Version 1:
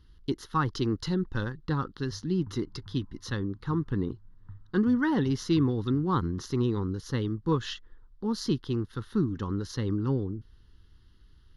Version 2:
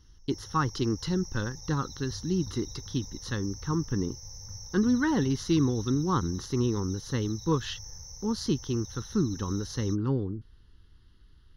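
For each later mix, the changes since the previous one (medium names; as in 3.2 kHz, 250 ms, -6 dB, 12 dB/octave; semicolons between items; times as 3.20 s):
first sound: unmuted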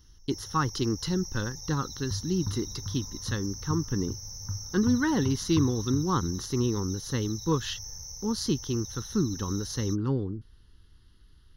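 second sound +11.5 dB; master: add treble shelf 7.6 kHz +12 dB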